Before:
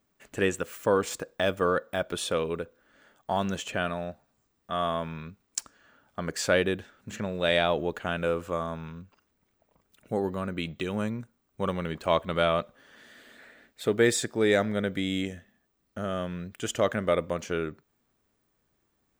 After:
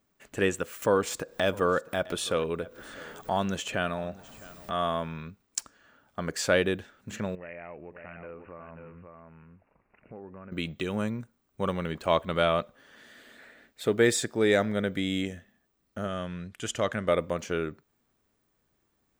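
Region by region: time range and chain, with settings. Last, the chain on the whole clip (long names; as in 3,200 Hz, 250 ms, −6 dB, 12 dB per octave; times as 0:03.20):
0:00.82–0:05.01: upward compression, threshold −29 dBFS + single-tap delay 658 ms −20.5 dB
0:07.35–0:10.52: single-tap delay 540 ms −11 dB + downward compressor 2.5 to 1, threshold −48 dBFS + bad sample-rate conversion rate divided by 8×, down none, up filtered
0:16.07–0:17.08: low-pass filter 11,000 Hz + parametric band 420 Hz −4 dB 2.2 octaves
whole clip: no processing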